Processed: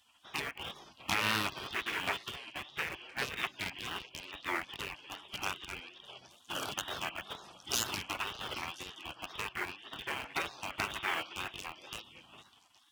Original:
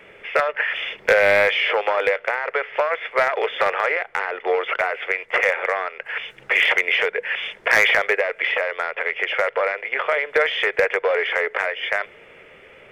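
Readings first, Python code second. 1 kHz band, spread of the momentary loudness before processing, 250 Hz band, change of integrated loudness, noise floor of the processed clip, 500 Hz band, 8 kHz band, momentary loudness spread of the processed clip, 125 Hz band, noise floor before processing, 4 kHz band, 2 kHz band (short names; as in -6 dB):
-15.0 dB, 8 LU, -4.5 dB, -17.0 dB, -64 dBFS, -26.0 dB, +1.0 dB, 12 LU, n/a, -47 dBFS, -9.5 dB, -18.5 dB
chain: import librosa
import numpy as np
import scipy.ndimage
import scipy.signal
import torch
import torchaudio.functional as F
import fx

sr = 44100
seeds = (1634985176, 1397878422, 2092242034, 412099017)

p1 = fx.low_shelf(x, sr, hz=420.0, db=5.0)
p2 = fx.hum_notches(p1, sr, base_hz=60, count=8)
p3 = fx.echo_stepped(p2, sr, ms=204, hz=1100.0, octaves=0.7, feedback_pct=70, wet_db=-7.0)
p4 = fx.wow_flutter(p3, sr, seeds[0], rate_hz=2.1, depth_cents=140.0)
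p5 = fx.spec_gate(p4, sr, threshold_db=-20, keep='weak')
p6 = fx.schmitt(p5, sr, flips_db=-33.5)
p7 = p5 + (p6 * 10.0 ** (-6.5 / 20.0))
p8 = scipy.signal.sosfilt(scipy.signal.butter(2, 66.0, 'highpass', fs=sr, output='sos'), p7)
p9 = fx.high_shelf(p8, sr, hz=4400.0, db=7.0)
y = p9 * 10.0 ** (-5.5 / 20.0)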